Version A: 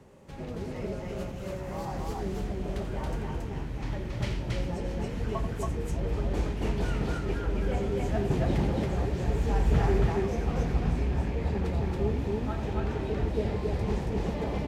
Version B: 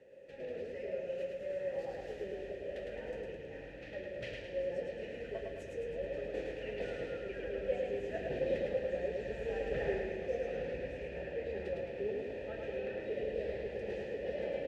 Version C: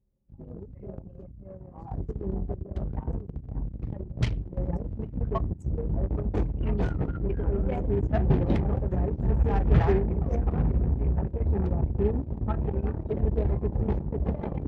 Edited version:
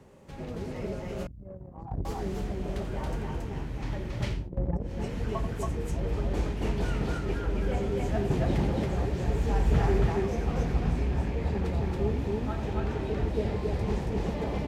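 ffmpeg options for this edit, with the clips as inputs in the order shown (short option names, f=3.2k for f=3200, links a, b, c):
-filter_complex "[2:a]asplit=2[a][b];[0:a]asplit=3[c][d][e];[c]atrim=end=1.272[f];[a]atrim=start=1.268:end=2.052[g];[d]atrim=start=2.048:end=4.5[h];[b]atrim=start=4.26:end=5.04[i];[e]atrim=start=4.8[j];[f][g]acrossfade=d=0.004:c1=hsin:c2=hsin[k];[k][h]acrossfade=d=0.004:c1=hsin:c2=hsin[l];[l][i]acrossfade=d=0.24:c1=tri:c2=tri[m];[m][j]acrossfade=d=0.24:c1=tri:c2=tri"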